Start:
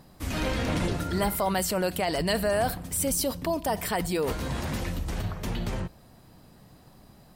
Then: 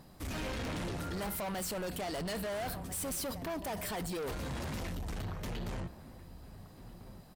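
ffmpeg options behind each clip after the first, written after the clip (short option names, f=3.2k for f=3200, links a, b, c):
-filter_complex "[0:a]asplit=2[a][b];[b]adelay=1341,volume=-18dB,highshelf=f=4k:g=-30.2[c];[a][c]amix=inputs=2:normalize=0,asoftclip=type=tanh:threshold=-32.5dB,volume=-2.5dB"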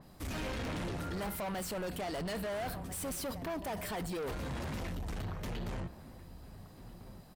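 -af "adynamicequalizer=threshold=0.00178:dfrequency=3600:dqfactor=0.7:tfrequency=3600:tqfactor=0.7:attack=5:release=100:ratio=0.375:range=2:mode=cutabove:tftype=highshelf"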